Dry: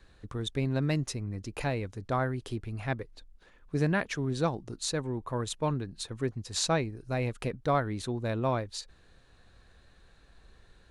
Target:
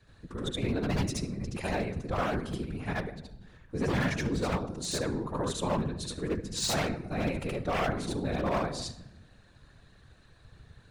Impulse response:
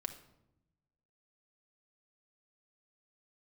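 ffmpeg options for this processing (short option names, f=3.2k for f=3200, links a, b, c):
-filter_complex "[0:a]asplit=2[a][b];[1:a]atrim=start_sample=2205,adelay=73[c];[b][c]afir=irnorm=-1:irlink=0,volume=4dB[d];[a][d]amix=inputs=2:normalize=0,aeval=exprs='0.106*(abs(mod(val(0)/0.106+3,4)-2)-1)':c=same,afftfilt=real='hypot(re,im)*cos(2*PI*random(0))':imag='hypot(re,im)*sin(2*PI*random(1))':win_size=512:overlap=0.75,volume=2.5dB"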